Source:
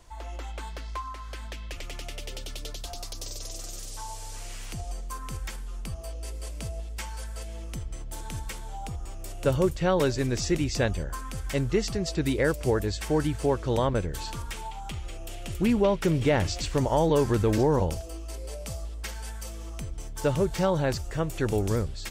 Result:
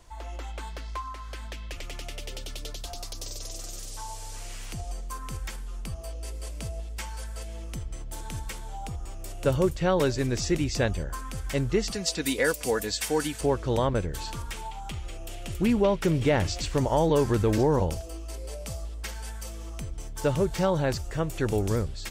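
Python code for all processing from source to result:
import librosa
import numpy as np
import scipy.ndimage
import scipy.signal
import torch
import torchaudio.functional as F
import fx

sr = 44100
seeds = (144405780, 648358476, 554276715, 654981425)

y = fx.chain(x, sr, fx.tilt_eq(slope=2.5),
    fx.comb(ms=4.1, depth=0.54), at=(11.91, 13.41))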